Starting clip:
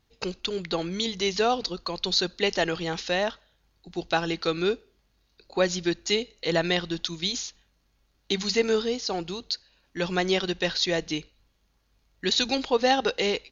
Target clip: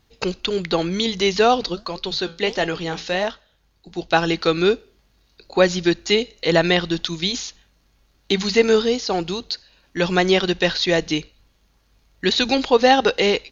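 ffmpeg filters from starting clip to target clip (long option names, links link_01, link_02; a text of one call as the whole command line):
ffmpeg -i in.wav -filter_complex "[0:a]acrossover=split=3800[link_01][link_02];[link_02]acompressor=threshold=-37dB:ratio=4:attack=1:release=60[link_03];[link_01][link_03]amix=inputs=2:normalize=0,asplit=3[link_04][link_05][link_06];[link_04]afade=type=out:start_time=1.74:duration=0.02[link_07];[link_05]flanger=delay=6.5:depth=8.6:regen=-71:speed=1.5:shape=sinusoidal,afade=type=in:start_time=1.74:duration=0.02,afade=type=out:start_time=4.12:duration=0.02[link_08];[link_06]afade=type=in:start_time=4.12:duration=0.02[link_09];[link_07][link_08][link_09]amix=inputs=3:normalize=0,volume=8dB" out.wav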